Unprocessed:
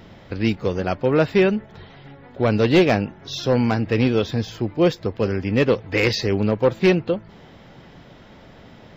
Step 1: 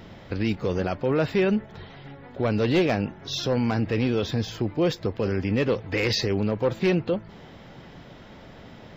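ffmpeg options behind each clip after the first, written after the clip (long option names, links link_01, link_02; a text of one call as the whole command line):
ffmpeg -i in.wav -af "alimiter=limit=-15dB:level=0:latency=1:release=30" out.wav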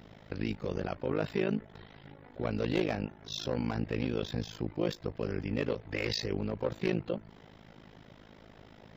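ffmpeg -i in.wav -af "tremolo=f=53:d=0.947,volume=-5dB" out.wav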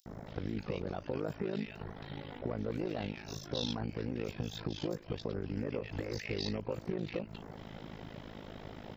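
ffmpeg -i in.wav -filter_complex "[0:a]alimiter=level_in=3dB:limit=-24dB:level=0:latency=1:release=190,volume=-3dB,acompressor=threshold=-40dB:ratio=6,acrossover=split=1700|5800[link_01][link_02][link_03];[link_01]adelay=60[link_04];[link_02]adelay=270[link_05];[link_04][link_05][link_03]amix=inputs=3:normalize=0,volume=7.5dB" out.wav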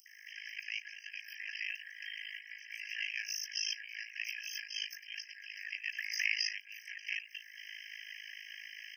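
ffmpeg -i in.wav -af "afftfilt=real='re*eq(mod(floor(b*sr/1024/1600),2),1)':imag='im*eq(mod(floor(b*sr/1024/1600),2),1)':win_size=1024:overlap=0.75,volume=12dB" out.wav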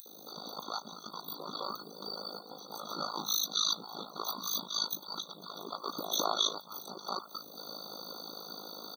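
ffmpeg -i in.wav -filter_complex "[0:a]afftfilt=real='real(if(lt(b,272),68*(eq(floor(b/68),0)*1+eq(floor(b/68),1)*0+eq(floor(b/68),2)*3+eq(floor(b/68),3)*2)+mod(b,68),b),0)':imag='imag(if(lt(b,272),68*(eq(floor(b/68),0)*1+eq(floor(b/68),1)*0+eq(floor(b/68),2)*3+eq(floor(b/68),3)*2)+mod(b,68),b),0)':win_size=2048:overlap=0.75,aemphasis=mode=production:type=75kf,asplit=2[link_01][link_02];[link_02]adelay=190,highpass=300,lowpass=3400,asoftclip=type=hard:threshold=-23dB,volume=-28dB[link_03];[link_01][link_03]amix=inputs=2:normalize=0" out.wav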